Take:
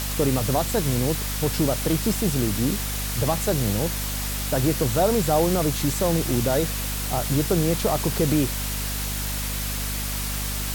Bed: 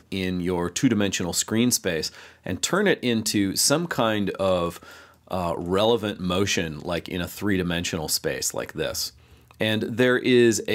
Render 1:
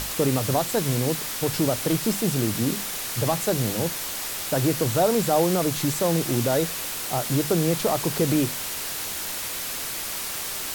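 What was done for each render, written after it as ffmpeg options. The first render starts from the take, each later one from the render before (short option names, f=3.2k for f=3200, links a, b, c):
-af "bandreject=f=50:t=h:w=6,bandreject=f=100:t=h:w=6,bandreject=f=150:t=h:w=6,bandreject=f=200:t=h:w=6,bandreject=f=250:t=h:w=6"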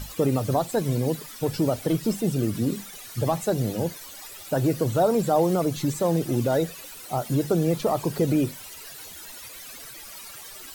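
-af "afftdn=nr=15:nf=-31"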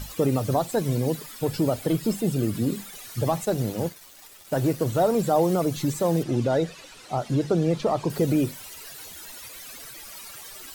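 -filter_complex "[0:a]asettb=1/sr,asplit=3[a][b][c];[a]atrim=end=1.264[d];[b]atrim=start=1.26:end=2.95,asetpts=PTS-STARTPTS,afade=t=in:d=0.004:c=qsin,afade=t=out:st=1.686:d=0.004:c=qsin,bandreject=f=5.8k:w=12[e];[c]atrim=start=2.946[f];[d][e]acrossfade=d=0.004:c1=hsin:c2=qsin[g];[g][f]acrossfade=d=0.004:c1=qsin:c2=hsin,asettb=1/sr,asplit=3[h][i][j];[h]atrim=end=3.454[k];[i]atrim=start=3.45:end=5.19,asetpts=PTS-STARTPTS,afade=t=in:d=0.004:c=qsin,afade=t=out:st=1.736:d=0.004:c=qsin,aeval=exprs='sgn(val(0))*max(abs(val(0))-0.0075,0)':c=same[l];[j]atrim=start=5.186[m];[k][l]acrossfade=d=0.004:c1=hsin:c2=qsin[n];[n][m]acrossfade=d=0.004:c1=qsin:c2=hsin,asettb=1/sr,asplit=3[o][p][q];[o]atrim=end=6.234[r];[p]atrim=start=6.23:end=8.1,asetpts=PTS-STARTPTS,afade=t=in:d=0.004:c=qsin,afade=t=out:st=1.866:d=0.004:c=qsin,lowpass=5.9k[s];[q]atrim=start=8.096[t];[r][s]acrossfade=d=0.004:c1=hsin:c2=qsin[u];[u][t]acrossfade=d=0.004:c1=qsin:c2=hsin"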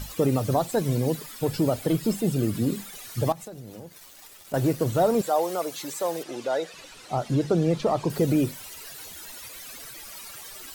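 -filter_complex "[0:a]asettb=1/sr,asplit=3[a][b][c];[a]atrim=end=3.324[d];[b]atrim=start=3.32:end=4.54,asetpts=PTS-STARTPTS,afade=t=in:d=0.004:c=qsin,afade=t=out:st=1.216:d=0.004:c=qsin,acompressor=threshold=-37dB:ratio=8:attack=3.2:release=140:knee=1:detection=peak[e];[c]atrim=start=4.536[f];[d][e]acrossfade=d=0.004:c1=hsin:c2=qsin[g];[g][f]acrossfade=d=0.004:c1=qsin:c2=hsin,asettb=1/sr,asplit=3[h][i][j];[h]atrim=end=5.214[k];[i]atrim=start=5.21:end=6.74,asetpts=PTS-STARTPTS,afade=t=in:d=0.004:c=qsin,afade=t=out:st=1.526:d=0.004:c=qsin,highpass=540[l];[j]atrim=start=6.736[m];[k][l]acrossfade=d=0.004:c1=hsin:c2=qsin[n];[n][m]acrossfade=d=0.004:c1=qsin:c2=hsin"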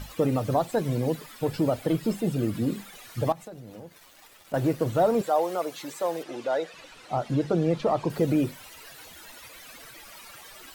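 -af "bass=f=250:g=-3,treble=f=4k:g=-8,bandreject=f=400:w=12"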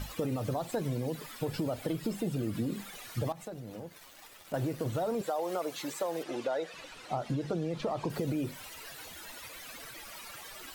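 -filter_complex "[0:a]acrossover=split=2700[a][b];[a]alimiter=limit=-19.5dB:level=0:latency=1:release=35[c];[c][b]amix=inputs=2:normalize=0,acompressor=threshold=-29dB:ratio=6"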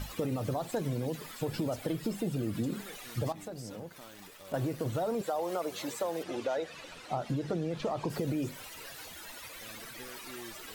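-filter_complex "[1:a]volume=-30dB[a];[0:a][a]amix=inputs=2:normalize=0"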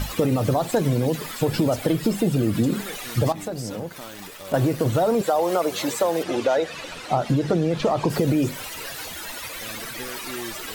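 -af "volume=12dB"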